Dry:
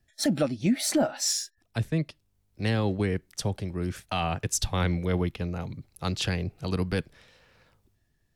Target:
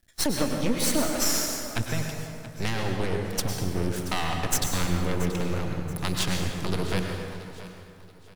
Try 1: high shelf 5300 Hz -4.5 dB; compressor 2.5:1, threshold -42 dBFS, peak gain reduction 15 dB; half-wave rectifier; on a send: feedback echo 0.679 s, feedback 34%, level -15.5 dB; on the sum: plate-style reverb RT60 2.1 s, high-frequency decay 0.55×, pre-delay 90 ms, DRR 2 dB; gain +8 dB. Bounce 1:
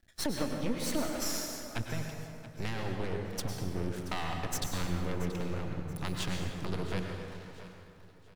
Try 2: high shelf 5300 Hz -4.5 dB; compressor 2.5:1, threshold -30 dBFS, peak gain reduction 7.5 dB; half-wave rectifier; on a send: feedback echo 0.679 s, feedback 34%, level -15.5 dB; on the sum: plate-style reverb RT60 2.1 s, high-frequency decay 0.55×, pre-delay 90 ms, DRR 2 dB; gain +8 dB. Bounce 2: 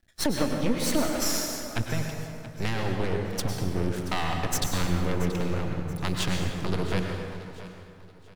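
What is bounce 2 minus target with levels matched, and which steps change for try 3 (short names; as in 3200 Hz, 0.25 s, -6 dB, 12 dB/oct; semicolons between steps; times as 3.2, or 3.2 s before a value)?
8000 Hz band -3.0 dB
change: high shelf 5300 Hz +7 dB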